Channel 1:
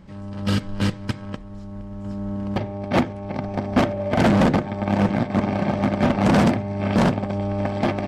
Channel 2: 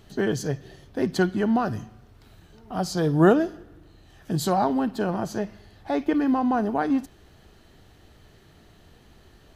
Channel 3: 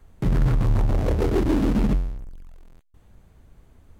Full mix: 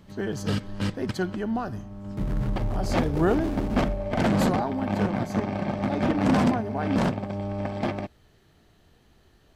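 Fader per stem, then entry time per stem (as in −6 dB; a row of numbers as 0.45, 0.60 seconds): −6.0, −6.0, −8.0 decibels; 0.00, 0.00, 1.95 seconds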